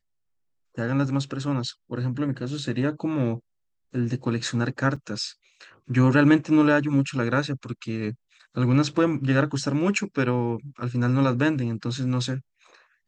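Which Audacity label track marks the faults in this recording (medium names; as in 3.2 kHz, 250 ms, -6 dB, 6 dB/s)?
4.960000	4.960000	dropout 4.6 ms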